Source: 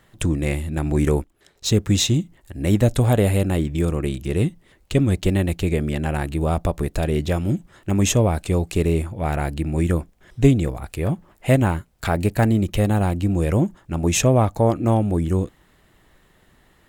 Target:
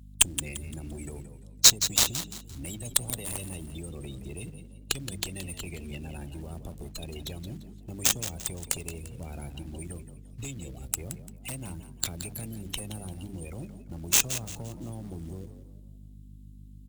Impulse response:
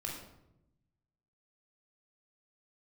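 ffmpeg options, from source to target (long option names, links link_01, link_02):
-filter_complex "[0:a]aemphasis=mode=production:type=cd,bandreject=frequency=50:width_type=h:width=6,bandreject=frequency=100:width_type=h:width=6,bandreject=frequency=150:width_type=h:width=6,bandreject=frequency=200:width_type=h:width=6,bandreject=frequency=250:width_type=h:width=6,bandreject=frequency=300:width_type=h:width=6,afftdn=noise_reduction=30:noise_floor=-27,lowshelf=frequency=310:gain=6,acrossover=split=180|640|2100|7200[link_01][link_02][link_03][link_04][link_05];[link_01]acompressor=threshold=-24dB:ratio=4[link_06];[link_02]acompressor=threshold=-25dB:ratio=4[link_07];[link_03]acompressor=threshold=-28dB:ratio=4[link_08];[link_04]acompressor=threshold=-39dB:ratio=4[link_09];[link_05]acompressor=threshold=-44dB:ratio=4[link_10];[link_06][link_07][link_08][link_09][link_10]amix=inputs=5:normalize=0,acrossover=split=380|2500[link_11][link_12][link_13];[link_12]alimiter=limit=-24dB:level=0:latency=1:release=112[link_14];[link_11][link_14][link_13]amix=inputs=3:normalize=0,acompressor=threshold=-26dB:ratio=3,aexciter=amount=7.3:drive=8.2:freq=2600,acrusher=bits=5:mode=log:mix=0:aa=0.000001,aeval=exprs='val(0)+0.0158*(sin(2*PI*50*n/s)+sin(2*PI*2*50*n/s)/2+sin(2*PI*3*50*n/s)/3+sin(2*PI*4*50*n/s)/4+sin(2*PI*5*50*n/s)/5)':channel_layout=same,aeval=exprs='1.19*(cos(1*acos(clip(val(0)/1.19,-1,1)))-cos(1*PI/2))+0.237*(cos(7*acos(clip(val(0)/1.19,-1,1)))-cos(7*PI/2))':channel_layout=same,asplit=2[link_15][link_16];[link_16]asplit=4[link_17][link_18][link_19][link_20];[link_17]adelay=172,afreqshift=57,volume=-11.5dB[link_21];[link_18]adelay=344,afreqshift=114,volume=-20.6dB[link_22];[link_19]adelay=516,afreqshift=171,volume=-29.7dB[link_23];[link_20]adelay=688,afreqshift=228,volume=-38.9dB[link_24];[link_21][link_22][link_23][link_24]amix=inputs=4:normalize=0[link_25];[link_15][link_25]amix=inputs=2:normalize=0,volume=-2.5dB"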